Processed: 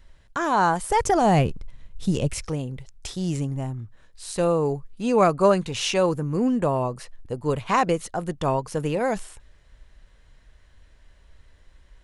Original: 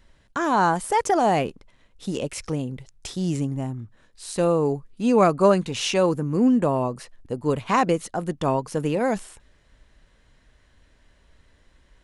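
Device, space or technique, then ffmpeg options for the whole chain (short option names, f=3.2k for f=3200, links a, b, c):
low shelf boost with a cut just above: -filter_complex "[0:a]lowshelf=f=73:g=7.5,equalizer=f=250:t=o:w=0.96:g=-5,asettb=1/sr,asplit=3[a][b][c];[a]atrim=end=0.914[d];[b]atrim=start=0.91:end=2.4,asetpts=PTS-STARTPTS,afade=t=in:d=0.004:c=qsin,afade=t=out:st=1.486:d=0.004:c=qsin,bass=f=250:g=12,treble=f=4k:g=2[e];[c]atrim=start=2.396[f];[d][e]acrossfade=d=0.004:c1=hsin:c2=qsin[g];[g][f]acrossfade=d=0.004:c1=qsin:c2=hsin"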